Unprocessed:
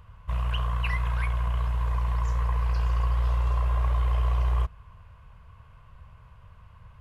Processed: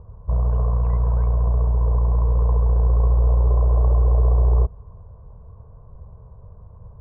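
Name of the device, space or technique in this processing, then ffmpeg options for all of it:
under water: -af "lowpass=frequency=800:width=0.5412,lowpass=frequency=800:width=1.3066,equalizer=frequency=420:width_type=o:width=0.57:gain=8.5,volume=8dB"

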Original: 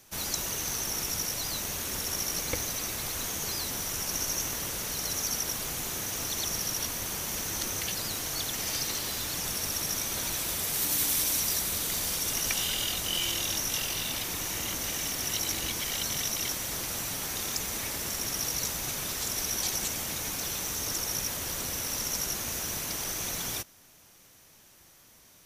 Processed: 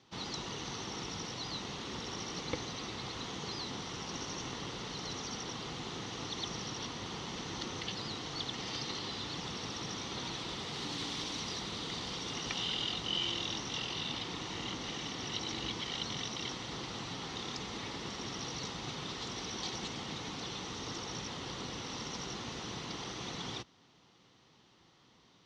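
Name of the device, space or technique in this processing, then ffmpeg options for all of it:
guitar cabinet: -af "highpass=78,equalizer=frequency=81:width_type=q:width=4:gain=-10,equalizer=frequency=610:width_type=q:width=4:gain=-9,equalizer=frequency=1600:width_type=q:width=4:gain=-9,equalizer=frequency=2400:width_type=q:width=4:gain=-8,lowpass=frequency=4100:width=0.5412,lowpass=frequency=4100:width=1.3066"

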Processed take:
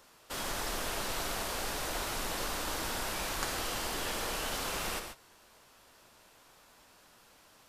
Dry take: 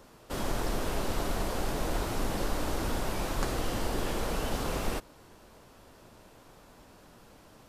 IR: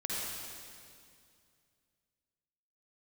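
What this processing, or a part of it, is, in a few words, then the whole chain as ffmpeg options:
keyed gated reverb: -filter_complex "[0:a]asplit=3[link_01][link_02][link_03];[1:a]atrim=start_sample=2205[link_04];[link_02][link_04]afir=irnorm=-1:irlink=0[link_05];[link_03]apad=whole_len=338795[link_06];[link_05][link_06]sidechaingate=range=-33dB:threshold=-47dB:ratio=16:detection=peak,volume=-8dB[link_07];[link_01][link_07]amix=inputs=2:normalize=0,tiltshelf=frequency=710:gain=-7.5,volume=-6.5dB"

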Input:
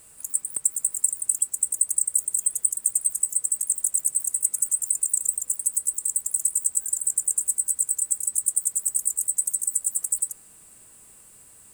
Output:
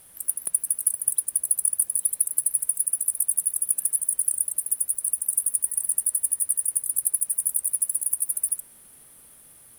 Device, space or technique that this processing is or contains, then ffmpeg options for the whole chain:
nightcore: -af "asetrate=52920,aresample=44100"

